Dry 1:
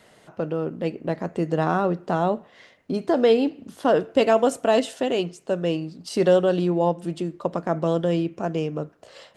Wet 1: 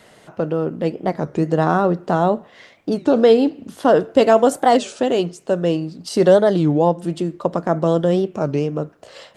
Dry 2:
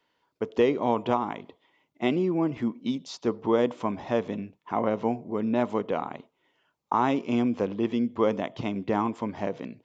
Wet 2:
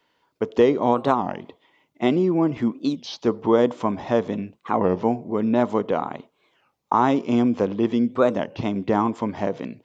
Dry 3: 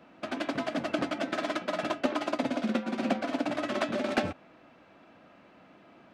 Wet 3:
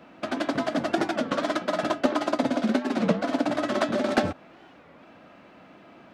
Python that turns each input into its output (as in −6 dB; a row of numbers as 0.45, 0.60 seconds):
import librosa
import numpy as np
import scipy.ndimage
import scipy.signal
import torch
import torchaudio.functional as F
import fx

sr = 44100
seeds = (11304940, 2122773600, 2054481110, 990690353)

y = fx.dynamic_eq(x, sr, hz=2500.0, q=2.3, threshold_db=-48.0, ratio=4.0, max_db=-6)
y = fx.record_warp(y, sr, rpm=33.33, depth_cents=250.0)
y = y * 10.0 ** (5.5 / 20.0)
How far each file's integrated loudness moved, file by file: +5.5, +5.5, +5.0 LU